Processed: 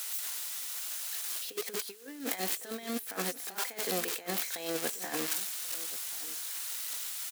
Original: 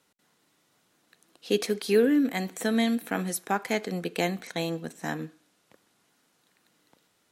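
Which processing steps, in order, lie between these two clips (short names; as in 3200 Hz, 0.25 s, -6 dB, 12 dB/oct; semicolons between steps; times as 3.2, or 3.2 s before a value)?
switching spikes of -21 dBFS; HPF 450 Hz 12 dB/oct; high shelf 4000 Hz -4.5 dB; negative-ratio compressor -36 dBFS, ratio -0.5; echo 1.084 s -18 dB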